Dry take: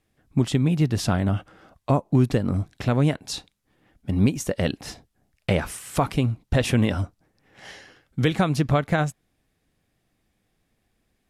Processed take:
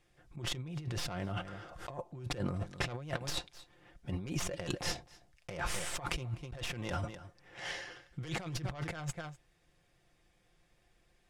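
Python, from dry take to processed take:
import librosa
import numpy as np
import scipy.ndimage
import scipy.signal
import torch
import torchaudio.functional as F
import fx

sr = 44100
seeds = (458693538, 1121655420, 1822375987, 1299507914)

y = fx.tracing_dist(x, sr, depth_ms=0.15)
y = fx.peak_eq(y, sr, hz=220.0, db=-10.5, octaves=0.83)
y = fx.notch(y, sr, hz=4100.0, q=24.0)
y = y + 0.49 * np.pad(y, (int(5.7 * sr / 1000.0), 0))[:len(y)]
y = y + 10.0 ** (-23.0 / 20.0) * np.pad(y, (int(252 * sr / 1000.0), 0))[:len(y)]
y = fx.over_compress(y, sr, threshold_db=-33.0, ratio=-1.0)
y = scipy.signal.sosfilt(scipy.signal.butter(2, 8600.0, 'lowpass', fs=sr, output='sos'), y)
y = fx.pre_swell(y, sr, db_per_s=49.0, at=(0.92, 1.9))
y = y * 10.0 ** (-5.5 / 20.0)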